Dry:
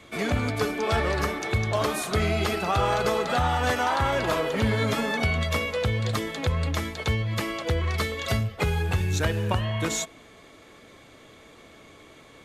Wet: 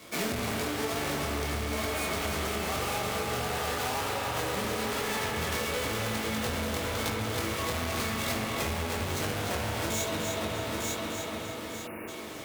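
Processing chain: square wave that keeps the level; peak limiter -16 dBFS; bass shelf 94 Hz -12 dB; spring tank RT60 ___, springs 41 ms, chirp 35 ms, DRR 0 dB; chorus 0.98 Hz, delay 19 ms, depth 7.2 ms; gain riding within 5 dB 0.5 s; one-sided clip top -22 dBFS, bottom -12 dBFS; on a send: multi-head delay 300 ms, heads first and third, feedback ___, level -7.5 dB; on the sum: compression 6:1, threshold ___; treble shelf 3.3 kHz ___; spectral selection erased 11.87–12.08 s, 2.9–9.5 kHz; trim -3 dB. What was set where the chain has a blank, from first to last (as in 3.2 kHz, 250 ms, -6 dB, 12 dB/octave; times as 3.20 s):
3.3 s, 45%, -26 dBFS, +6.5 dB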